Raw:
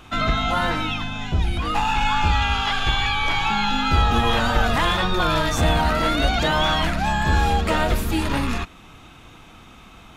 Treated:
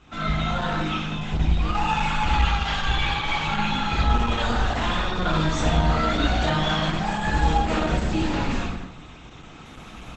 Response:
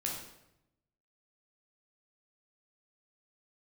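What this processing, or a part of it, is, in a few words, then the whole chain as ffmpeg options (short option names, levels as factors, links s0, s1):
speakerphone in a meeting room: -filter_complex "[0:a]asettb=1/sr,asplit=3[s0][s1][s2];[s0]atrim=end=7.214[s3];[s1]atrim=start=7.21:end=7.67,asetpts=PTS-STARTPTS,afade=t=in:d=0.004:c=qsin,afade=t=out:st=0.456:d=0.004:c=qsin,lowshelf=f=160:g=-2.5[s4];[s2]atrim=start=7.666[s5];[s3][s4]acrossfade=d=0.004:c1=hsin:c2=qsin[s6];[s6][s5]acrossfade=d=0.004:c1=qsin:c2=hsin[s7];[1:a]atrim=start_sample=2205[s8];[s7][s8]afir=irnorm=-1:irlink=0,asplit=2[s9][s10];[s10]adelay=160,highpass=300,lowpass=3400,asoftclip=type=hard:threshold=0.282,volume=0.224[s11];[s9][s11]amix=inputs=2:normalize=0,dynaudnorm=f=570:g=3:m=3.98,volume=0.447" -ar 48000 -c:a libopus -b:a 12k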